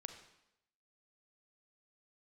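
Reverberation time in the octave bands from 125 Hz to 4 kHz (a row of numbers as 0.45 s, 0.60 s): 0.80 s, 0.80 s, 0.85 s, 0.85 s, 0.80 s, 0.80 s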